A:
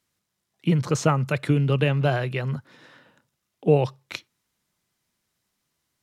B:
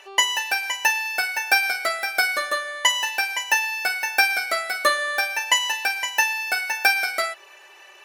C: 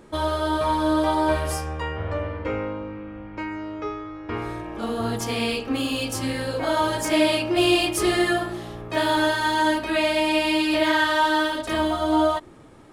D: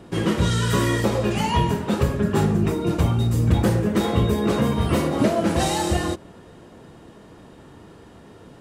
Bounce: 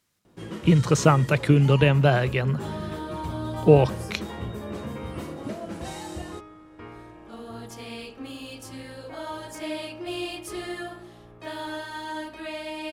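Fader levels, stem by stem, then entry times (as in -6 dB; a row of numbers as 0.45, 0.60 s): +3.0 dB, off, -13.0 dB, -14.5 dB; 0.00 s, off, 2.50 s, 0.25 s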